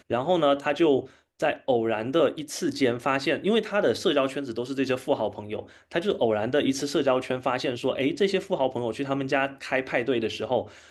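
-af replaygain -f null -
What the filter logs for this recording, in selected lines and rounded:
track_gain = +5.1 dB
track_peak = 0.246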